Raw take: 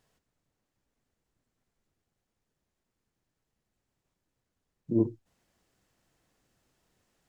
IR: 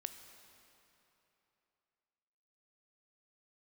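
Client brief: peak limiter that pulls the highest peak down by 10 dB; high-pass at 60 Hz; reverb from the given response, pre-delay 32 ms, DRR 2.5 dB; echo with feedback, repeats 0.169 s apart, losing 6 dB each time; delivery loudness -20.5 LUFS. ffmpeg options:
-filter_complex "[0:a]highpass=60,alimiter=limit=-23dB:level=0:latency=1,aecho=1:1:169|338|507|676|845|1014:0.501|0.251|0.125|0.0626|0.0313|0.0157,asplit=2[a][b];[1:a]atrim=start_sample=2205,adelay=32[c];[b][c]afir=irnorm=-1:irlink=0,volume=0.5dB[d];[a][d]amix=inputs=2:normalize=0,volume=15.5dB"

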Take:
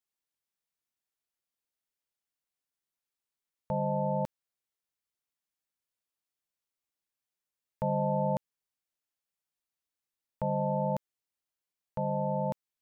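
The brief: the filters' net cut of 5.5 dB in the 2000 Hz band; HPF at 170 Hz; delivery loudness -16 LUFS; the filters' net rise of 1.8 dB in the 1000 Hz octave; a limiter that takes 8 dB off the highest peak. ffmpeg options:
-af "highpass=170,equalizer=f=1k:t=o:g=3.5,equalizer=f=2k:t=o:g=-9,volume=21.5dB,alimiter=limit=-6dB:level=0:latency=1"

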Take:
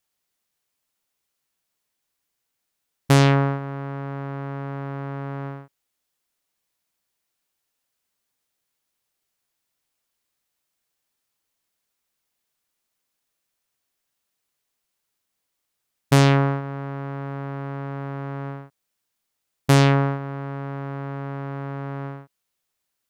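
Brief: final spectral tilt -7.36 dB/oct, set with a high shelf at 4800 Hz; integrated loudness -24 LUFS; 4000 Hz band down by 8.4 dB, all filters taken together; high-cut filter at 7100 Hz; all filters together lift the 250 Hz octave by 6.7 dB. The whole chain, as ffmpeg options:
-af "lowpass=7.1k,equalizer=f=250:t=o:g=8.5,equalizer=f=4k:t=o:g=-7.5,highshelf=f=4.8k:g=-7.5,volume=-3dB"

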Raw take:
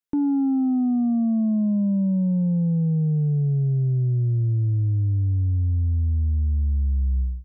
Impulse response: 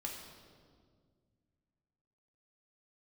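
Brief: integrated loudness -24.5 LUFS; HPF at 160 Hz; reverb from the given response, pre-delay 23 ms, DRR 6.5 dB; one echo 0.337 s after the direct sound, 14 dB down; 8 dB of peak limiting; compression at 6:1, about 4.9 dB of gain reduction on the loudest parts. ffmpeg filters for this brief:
-filter_complex "[0:a]highpass=160,acompressor=threshold=-25dB:ratio=6,alimiter=level_in=2dB:limit=-24dB:level=0:latency=1,volume=-2dB,aecho=1:1:337:0.2,asplit=2[a][b];[1:a]atrim=start_sample=2205,adelay=23[c];[b][c]afir=irnorm=-1:irlink=0,volume=-6dB[d];[a][d]amix=inputs=2:normalize=0,volume=6dB"

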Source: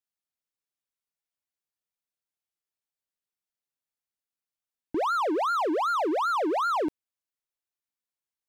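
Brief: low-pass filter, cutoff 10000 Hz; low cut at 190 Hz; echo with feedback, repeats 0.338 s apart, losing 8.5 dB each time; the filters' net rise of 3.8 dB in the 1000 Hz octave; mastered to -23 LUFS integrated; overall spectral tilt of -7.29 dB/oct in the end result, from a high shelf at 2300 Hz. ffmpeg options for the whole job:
-af "highpass=190,lowpass=10k,equalizer=f=1k:t=o:g=6,highshelf=f=2.3k:g=-4.5,aecho=1:1:338|676|1014|1352:0.376|0.143|0.0543|0.0206,volume=0.5dB"

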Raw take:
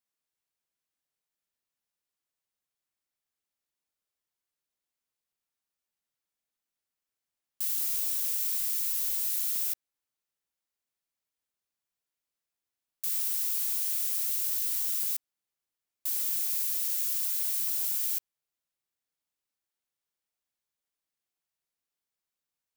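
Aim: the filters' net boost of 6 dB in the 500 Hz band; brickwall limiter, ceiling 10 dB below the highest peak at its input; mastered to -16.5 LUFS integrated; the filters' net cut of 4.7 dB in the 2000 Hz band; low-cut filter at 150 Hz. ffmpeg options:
-af "highpass=150,equalizer=f=500:t=o:g=8,equalizer=f=2k:t=o:g=-6.5,volume=17dB,alimiter=limit=-9.5dB:level=0:latency=1"

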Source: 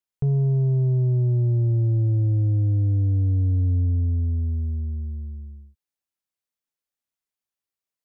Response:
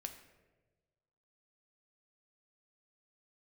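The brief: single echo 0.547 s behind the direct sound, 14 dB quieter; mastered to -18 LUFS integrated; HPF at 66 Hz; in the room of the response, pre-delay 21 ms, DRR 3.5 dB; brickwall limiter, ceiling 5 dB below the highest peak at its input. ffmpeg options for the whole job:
-filter_complex "[0:a]highpass=66,alimiter=limit=-20.5dB:level=0:latency=1,aecho=1:1:547:0.2,asplit=2[a][b];[1:a]atrim=start_sample=2205,adelay=21[c];[b][c]afir=irnorm=-1:irlink=0,volume=-0.5dB[d];[a][d]amix=inputs=2:normalize=0,volume=7dB"

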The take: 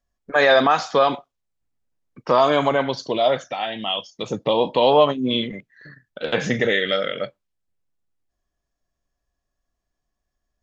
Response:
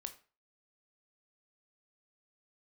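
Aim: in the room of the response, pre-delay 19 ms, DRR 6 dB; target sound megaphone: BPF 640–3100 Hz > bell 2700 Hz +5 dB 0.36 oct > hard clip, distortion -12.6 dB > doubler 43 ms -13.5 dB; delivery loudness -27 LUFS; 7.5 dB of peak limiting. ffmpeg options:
-filter_complex "[0:a]alimiter=limit=-11.5dB:level=0:latency=1,asplit=2[a][b];[1:a]atrim=start_sample=2205,adelay=19[c];[b][c]afir=irnorm=-1:irlink=0,volume=-2.5dB[d];[a][d]amix=inputs=2:normalize=0,highpass=640,lowpass=3.1k,equalizer=f=2.7k:t=o:w=0.36:g=5,asoftclip=type=hard:threshold=-20dB,asplit=2[e][f];[f]adelay=43,volume=-13.5dB[g];[e][g]amix=inputs=2:normalize=0"

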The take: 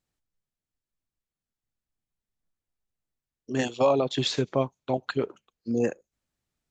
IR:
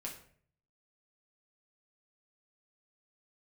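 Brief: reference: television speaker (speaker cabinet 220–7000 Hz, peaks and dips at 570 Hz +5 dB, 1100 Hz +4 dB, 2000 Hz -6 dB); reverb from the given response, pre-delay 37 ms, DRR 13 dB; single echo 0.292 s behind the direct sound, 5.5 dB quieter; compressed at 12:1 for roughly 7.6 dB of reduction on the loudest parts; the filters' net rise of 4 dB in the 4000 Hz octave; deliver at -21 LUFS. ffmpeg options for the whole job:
-filter_complex "[0:a]equalizer=f=4k:t=o:g=5,acompressor=threshold=-24dB:ratio=12,aecho=1:1:292:0.531,asplit=2[a][b];[1:a]atrim=start_sample=2205,adelay=37[c];[b][c]afir=irnorm=-1:irlink=0,volume=-11.5dB[d];[a][d]amix=inputs=2:normalize=0,highpass=f=220:w=0.5412,highpass=f=220:w=1.3066,equalizer=f=570:t=q:w=4:g=5,equalizer=f=1.1k:t=q:w=4:g=4,equalizer=f=2k:t=q:w=4:g=-6,lowpass=f=7k:w=0.5412,lowpass=f=7k:w=1.3066,volume=8.5dB"

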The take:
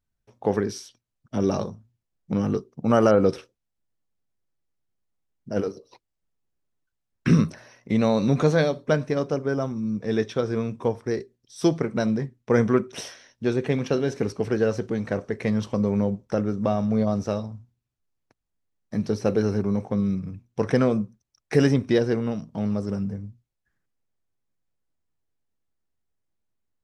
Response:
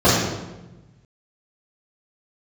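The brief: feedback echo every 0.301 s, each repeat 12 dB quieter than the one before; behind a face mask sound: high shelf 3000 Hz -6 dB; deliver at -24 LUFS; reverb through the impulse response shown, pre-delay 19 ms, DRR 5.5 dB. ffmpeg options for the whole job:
-filter_complex "[0:a]aecho=1:1:301|602|903:0.251|0.0628|0.0157,asplit=2[a][b];[1:a]atrim=start_sample=2205,adelay=19[c];[b][c]afir=irnorm=-1:irlink=0,volume=-30.5dB[d];[a][d]amix=inputs=2:normalize=0,highshelf=f=3k:g=-6,volume=-2.5dB"

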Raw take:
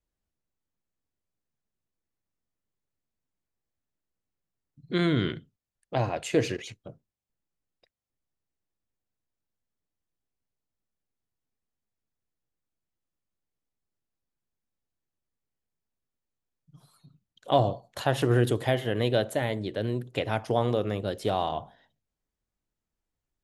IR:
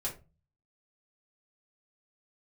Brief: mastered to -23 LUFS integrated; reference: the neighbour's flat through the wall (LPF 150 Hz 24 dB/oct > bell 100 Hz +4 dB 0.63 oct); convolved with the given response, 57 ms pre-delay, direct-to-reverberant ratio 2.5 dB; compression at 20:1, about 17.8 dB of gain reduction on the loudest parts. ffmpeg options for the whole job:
-filter_complex "[0:a]acompressor=threshold=-35dB:ratio=20,asplit=2[a][b];[1:a]atrim=start_sample=2205,adelay=57[c];[b][c]afir=irnorm=-1:irlink=0,volume=-4.5dB[d];[a][d]amix=inputs=2:normalize=0,lowpass=f=150:w=0.5412,lowpass=f=150:w=1.3066,equalizer=f=100:t=o:w=0.63:g=4,volume=21.5dB"

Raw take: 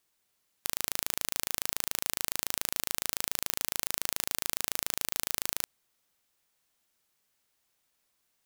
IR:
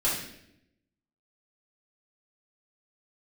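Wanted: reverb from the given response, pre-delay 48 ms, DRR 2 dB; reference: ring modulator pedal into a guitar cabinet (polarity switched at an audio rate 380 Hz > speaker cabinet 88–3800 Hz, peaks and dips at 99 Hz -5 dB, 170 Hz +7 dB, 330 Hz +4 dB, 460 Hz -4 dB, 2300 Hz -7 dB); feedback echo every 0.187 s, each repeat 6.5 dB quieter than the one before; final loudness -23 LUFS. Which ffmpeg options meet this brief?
-filter_complex "[0:a]aecho=1:1:187|374|561|748|935|1122:0.473|0.222|0.105|0.0491|0.0231|0.0109,asplit=2[a][b];[1:a]atrim=start_sample=2205,adelay=48[c];[b][c]afir=irnorm=-1:irlink=0,volume=-12dB[d];[a][d]amix=inputs=2:normalize=0,aeval=exprs='val(0)*sgn(sin(2*PI*380*n/s))':c=same,highpass=88,equalizer=f=99:t=q:w=4:g=-5,equalizer=f=170:t=q:w=4:g=7,equalizer=f=330:t=q:w=4:g=4,equalizer=f=460:t=q:w=4:g=-4,equalizer=f=2.3k:t=q:w=4:g=-7,lowpass=f=3.8k:w=0.5412,lowpass=f=3.8k:w=1.3066,volume=15dB"

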